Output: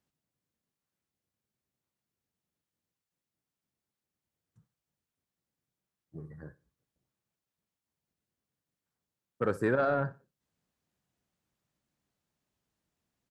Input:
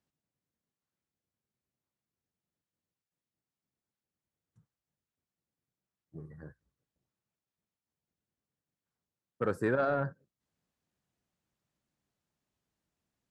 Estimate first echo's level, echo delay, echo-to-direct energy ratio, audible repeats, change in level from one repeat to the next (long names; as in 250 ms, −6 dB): −19.0 dB, 60 ms, −18.5 dB, 2, −10.0 dB